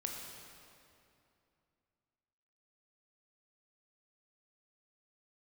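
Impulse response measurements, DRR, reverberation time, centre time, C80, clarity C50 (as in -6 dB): 0.5 dB, 2.7 s, 94 ms, 3.0 dB, 2.0 dB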